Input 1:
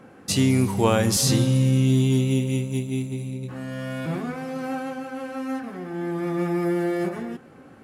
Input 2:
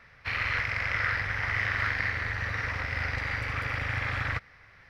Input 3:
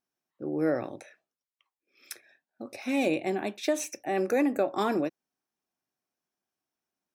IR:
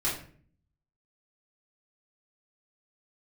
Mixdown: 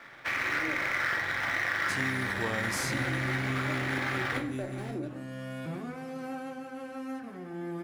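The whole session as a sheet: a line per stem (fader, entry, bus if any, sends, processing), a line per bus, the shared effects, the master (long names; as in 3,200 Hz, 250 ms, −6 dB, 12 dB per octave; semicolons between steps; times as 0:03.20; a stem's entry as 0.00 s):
−8.0 dB, 1.60 s, no send, no processing
+1.0 dB, 0.00 s, send −8.5 dB, each half-wave held at its own peak; three-way crossover with the lows and the highs turned down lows −24 dB, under 190 Hz, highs −18 dB, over 3,800 Hz
−9.5 dB, 0.00 s, send −10.5 dB, running median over 41 samples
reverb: on, RT60 0.50 s, pre-delay 3 ms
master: downward compressor 2 to 1, threshold −33 dBFS, peak gain reduction 8.5 dB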